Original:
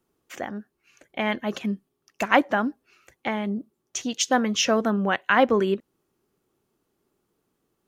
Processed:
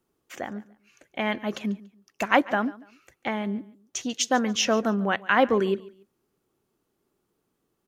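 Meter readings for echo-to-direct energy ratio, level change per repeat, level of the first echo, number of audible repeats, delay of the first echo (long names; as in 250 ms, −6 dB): −19.5 dB, −11.0 dB, −20.0 dB, 2, 143 ms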